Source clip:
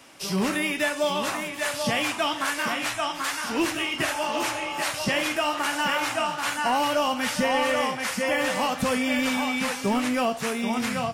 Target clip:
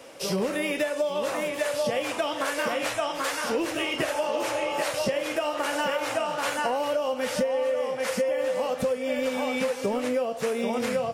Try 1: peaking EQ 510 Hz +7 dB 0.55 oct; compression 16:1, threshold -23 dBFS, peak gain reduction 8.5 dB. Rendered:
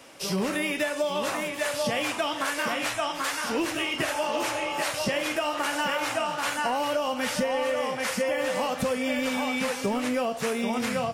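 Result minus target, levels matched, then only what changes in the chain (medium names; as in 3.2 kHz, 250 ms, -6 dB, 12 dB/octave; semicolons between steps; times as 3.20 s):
500 Hz band -3.0 dB
change: peaking EQ 510 Hz +17 dB 0.55 oct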